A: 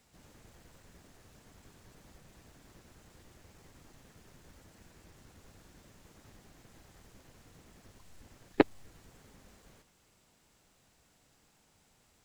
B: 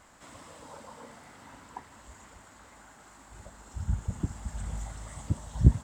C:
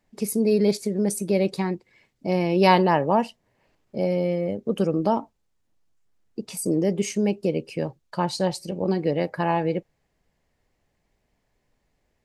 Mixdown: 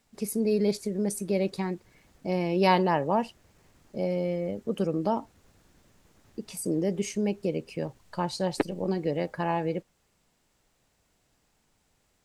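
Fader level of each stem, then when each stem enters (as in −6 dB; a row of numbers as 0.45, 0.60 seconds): −3.5 dB, muted, −5.0 dB; 0.00 s, muted, 0.00 s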